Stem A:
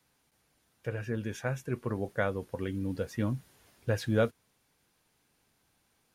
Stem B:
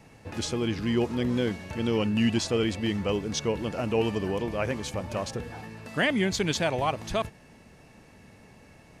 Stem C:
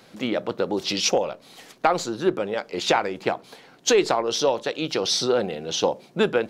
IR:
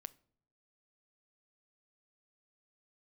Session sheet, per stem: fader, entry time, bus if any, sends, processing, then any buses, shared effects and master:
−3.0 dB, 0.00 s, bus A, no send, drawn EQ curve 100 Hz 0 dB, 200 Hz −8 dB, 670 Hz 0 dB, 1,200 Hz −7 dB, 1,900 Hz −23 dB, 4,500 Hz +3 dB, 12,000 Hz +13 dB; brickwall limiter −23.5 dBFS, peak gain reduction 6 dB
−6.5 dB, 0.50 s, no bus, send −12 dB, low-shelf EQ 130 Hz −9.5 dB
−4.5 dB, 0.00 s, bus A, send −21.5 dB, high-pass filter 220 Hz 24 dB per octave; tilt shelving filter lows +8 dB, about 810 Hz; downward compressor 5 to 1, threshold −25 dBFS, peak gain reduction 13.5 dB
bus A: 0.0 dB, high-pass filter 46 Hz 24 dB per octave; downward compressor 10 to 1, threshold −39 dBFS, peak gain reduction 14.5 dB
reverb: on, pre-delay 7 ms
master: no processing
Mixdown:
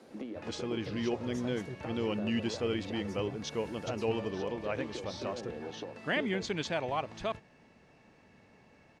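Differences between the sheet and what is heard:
stem A −3.0 dB → +5.5 dB
stem B: entry 0.50 s → 0.10 s
master: extra high-frequency loss of the air 99 metres

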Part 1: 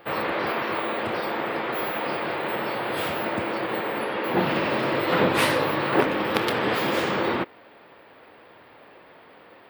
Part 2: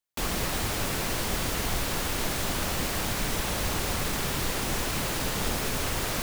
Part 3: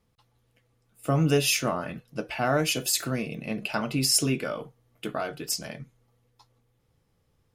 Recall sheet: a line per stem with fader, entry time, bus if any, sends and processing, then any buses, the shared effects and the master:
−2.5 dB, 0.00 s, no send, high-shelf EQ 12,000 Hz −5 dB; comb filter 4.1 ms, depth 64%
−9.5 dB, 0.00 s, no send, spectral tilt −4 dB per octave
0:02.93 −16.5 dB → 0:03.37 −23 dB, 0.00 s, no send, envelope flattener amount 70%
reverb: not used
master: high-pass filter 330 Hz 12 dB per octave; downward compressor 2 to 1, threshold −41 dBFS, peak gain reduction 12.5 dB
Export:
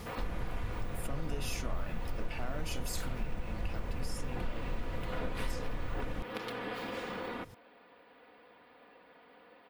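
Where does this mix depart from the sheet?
stem 1 −2.5 dB → −10.5 dB
stem 3 −16.5 dB → −9.5 dB
master: missing high-pass filter 330 Hz 12 dB per octave

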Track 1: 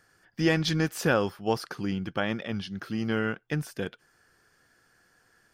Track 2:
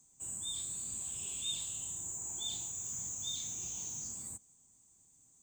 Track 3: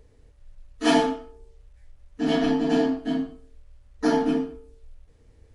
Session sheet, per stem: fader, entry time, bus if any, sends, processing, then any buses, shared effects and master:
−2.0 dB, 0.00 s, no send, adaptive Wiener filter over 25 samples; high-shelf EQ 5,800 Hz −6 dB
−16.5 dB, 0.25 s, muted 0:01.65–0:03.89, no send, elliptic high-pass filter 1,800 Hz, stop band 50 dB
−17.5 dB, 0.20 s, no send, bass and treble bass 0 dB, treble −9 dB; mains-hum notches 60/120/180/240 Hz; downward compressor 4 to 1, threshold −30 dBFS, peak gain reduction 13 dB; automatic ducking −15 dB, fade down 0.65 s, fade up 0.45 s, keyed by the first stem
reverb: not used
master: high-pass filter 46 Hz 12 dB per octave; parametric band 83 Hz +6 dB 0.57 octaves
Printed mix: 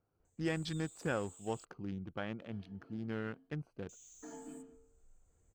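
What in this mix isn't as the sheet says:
stem 1 −2.0 dB → −11.5 dB
master: missing high-pass filter 46 Hz 12 dB per octave

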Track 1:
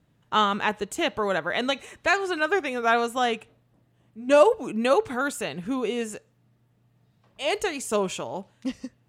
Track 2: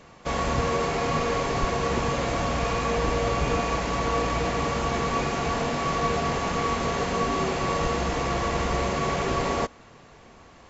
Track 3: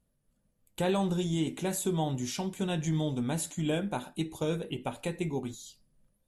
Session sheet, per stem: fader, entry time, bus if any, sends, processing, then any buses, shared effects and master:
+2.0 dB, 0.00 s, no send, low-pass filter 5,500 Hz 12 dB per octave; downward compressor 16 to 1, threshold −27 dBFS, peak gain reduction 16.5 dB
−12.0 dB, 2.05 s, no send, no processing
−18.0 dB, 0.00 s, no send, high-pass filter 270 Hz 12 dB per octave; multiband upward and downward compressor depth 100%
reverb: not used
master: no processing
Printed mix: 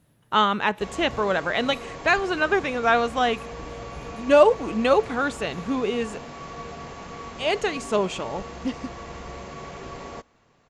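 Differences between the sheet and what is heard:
stem 1: missing downward compressor 16 to 1, threshold −27 dBFS, peak gain reduction 16.5 dB
stem 2: entry 2.05 s → 0.55 s

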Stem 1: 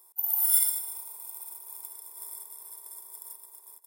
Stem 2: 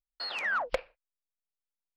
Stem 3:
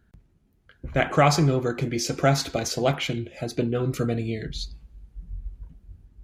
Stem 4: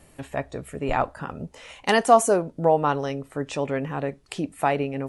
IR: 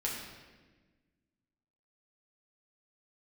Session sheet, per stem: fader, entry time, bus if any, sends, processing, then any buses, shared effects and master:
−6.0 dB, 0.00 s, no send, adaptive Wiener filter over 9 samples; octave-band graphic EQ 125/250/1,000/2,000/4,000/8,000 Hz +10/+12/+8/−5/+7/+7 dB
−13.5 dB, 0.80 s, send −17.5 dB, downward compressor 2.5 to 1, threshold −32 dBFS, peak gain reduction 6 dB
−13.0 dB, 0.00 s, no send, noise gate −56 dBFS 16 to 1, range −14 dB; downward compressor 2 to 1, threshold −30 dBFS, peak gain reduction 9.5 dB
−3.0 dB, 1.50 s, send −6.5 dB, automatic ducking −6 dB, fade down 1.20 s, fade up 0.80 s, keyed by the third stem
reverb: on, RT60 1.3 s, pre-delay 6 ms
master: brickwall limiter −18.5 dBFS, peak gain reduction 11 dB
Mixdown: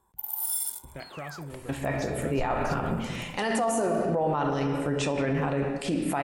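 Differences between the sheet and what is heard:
stem 3: missing noise gate −56 dBFS 16 to 1, range −14 dB
stem 4 −3.0 dB → +5.0 dB

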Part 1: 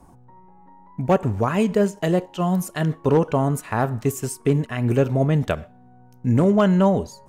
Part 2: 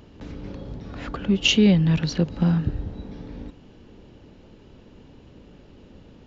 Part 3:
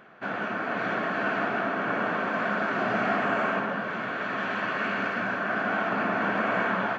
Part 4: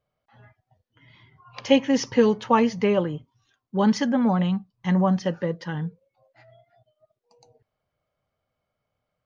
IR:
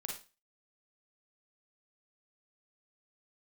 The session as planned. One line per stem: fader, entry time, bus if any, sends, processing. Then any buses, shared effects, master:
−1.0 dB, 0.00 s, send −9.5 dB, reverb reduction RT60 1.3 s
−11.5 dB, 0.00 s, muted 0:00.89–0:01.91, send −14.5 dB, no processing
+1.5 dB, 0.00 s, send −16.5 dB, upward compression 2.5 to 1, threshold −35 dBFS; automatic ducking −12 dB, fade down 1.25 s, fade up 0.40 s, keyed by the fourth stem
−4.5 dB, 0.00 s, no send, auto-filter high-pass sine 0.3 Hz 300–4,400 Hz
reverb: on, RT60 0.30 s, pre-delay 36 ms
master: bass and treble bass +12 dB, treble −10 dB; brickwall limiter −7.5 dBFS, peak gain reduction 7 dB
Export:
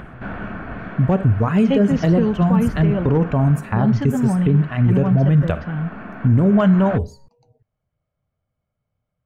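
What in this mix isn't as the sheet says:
stem 3: send off
stem 4: missing auto-filter high-pass sine 0.3 Hz 300–4,400 Hz

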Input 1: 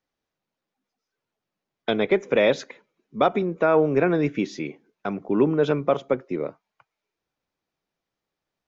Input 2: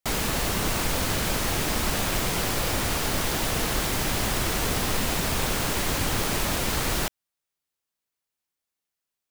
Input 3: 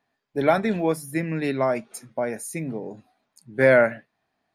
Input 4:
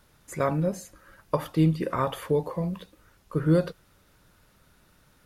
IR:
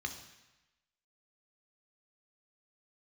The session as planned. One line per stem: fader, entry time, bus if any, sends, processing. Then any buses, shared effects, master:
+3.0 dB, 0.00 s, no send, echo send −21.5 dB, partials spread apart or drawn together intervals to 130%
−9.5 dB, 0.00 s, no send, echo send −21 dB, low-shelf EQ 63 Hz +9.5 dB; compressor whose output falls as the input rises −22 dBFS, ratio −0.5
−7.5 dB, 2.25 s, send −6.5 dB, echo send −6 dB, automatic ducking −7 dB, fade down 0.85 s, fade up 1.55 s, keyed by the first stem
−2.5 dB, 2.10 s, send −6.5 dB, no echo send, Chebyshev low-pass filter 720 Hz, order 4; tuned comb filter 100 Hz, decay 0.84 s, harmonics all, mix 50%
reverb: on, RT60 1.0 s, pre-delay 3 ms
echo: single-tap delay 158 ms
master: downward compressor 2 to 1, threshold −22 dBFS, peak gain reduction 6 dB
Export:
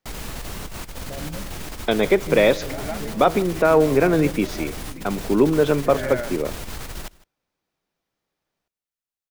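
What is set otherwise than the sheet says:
stem 1: missing partials spread apart or drawn together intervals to 130%
stem 4: entry 2.10 s → 0.70 s
master: missing downward compressor 2 to 1, threshold −22 dBFS, peak gain reduction 6 dB

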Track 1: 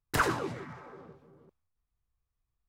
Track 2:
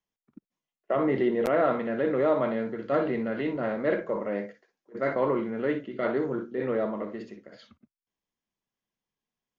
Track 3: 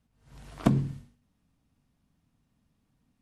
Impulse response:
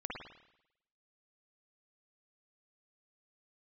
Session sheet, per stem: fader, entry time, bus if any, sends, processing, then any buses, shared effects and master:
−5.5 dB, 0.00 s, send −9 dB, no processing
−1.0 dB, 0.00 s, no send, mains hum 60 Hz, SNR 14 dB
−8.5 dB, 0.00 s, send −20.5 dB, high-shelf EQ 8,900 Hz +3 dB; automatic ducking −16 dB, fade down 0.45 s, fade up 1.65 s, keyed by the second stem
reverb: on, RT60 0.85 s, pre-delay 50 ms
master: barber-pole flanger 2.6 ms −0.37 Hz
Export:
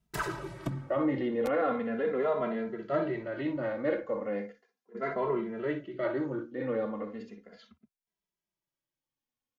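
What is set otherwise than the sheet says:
stem 2: missing mains hum 60 Hz, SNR 14 dB
stem 3 −8.5 dB → −1.0 dB

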